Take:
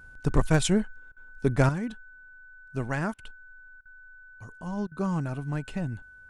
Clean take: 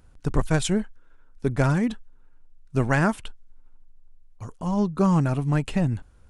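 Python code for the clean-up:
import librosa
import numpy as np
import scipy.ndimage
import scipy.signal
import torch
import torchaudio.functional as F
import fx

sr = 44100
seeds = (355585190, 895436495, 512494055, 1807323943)

y = fx.fix_declip(x, sr, threshold_db=-9.5)
y = fx.notch(y, sr, hz=1500.0, q=30.0)
y = fx.fix_interpolate(y, sr, at_s=(1.12, 3.14, 3.81, 4.87), length_ms=44.0)
y = fx.fix_level(y, sr, at_s=1.69, step_db=8.5)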